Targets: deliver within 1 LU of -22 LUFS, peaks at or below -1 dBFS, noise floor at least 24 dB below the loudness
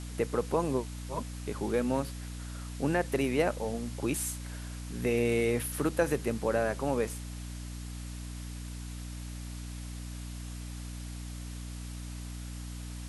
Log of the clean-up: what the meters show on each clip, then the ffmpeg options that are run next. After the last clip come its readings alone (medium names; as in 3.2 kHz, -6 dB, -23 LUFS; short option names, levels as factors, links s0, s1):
hum 60 Hz; highest harmonic 300 Hz; hum level -38 dBFS; noise floor -41 dBFS; noise floor target -58 dBFS; loudness -34.0 LUFS; peak level -14.0 dBFS; loudness target -22.0 LUFS
-> -af "bandreject=f=60:t=h:w=4,bandreject=f=120:t=h:w=4,bandreject=f=180:t=h:w=4,bandreject=f=240:t=h:w=4,bandreject=f=300:t=h:w=4"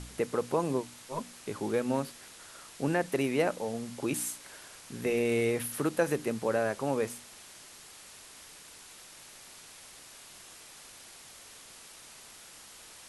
hum not found; noise floor -51 dBFS; noise floor target -56 dBFS
-> -af "afftdn=nr=6:nf=-51"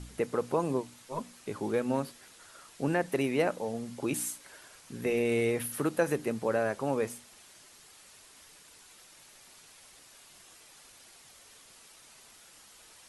noise floor -56 dBFS; loudness -32.0 LUFS; peak level -13.5 dBFS; loudness target -22.0 LUFS
-> -af "volume=3.16"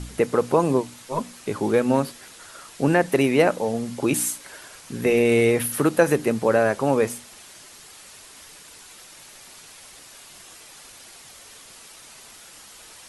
loudness -22.0 LUFS; peak level -3.5 dBFS; noise floor -46 dBFS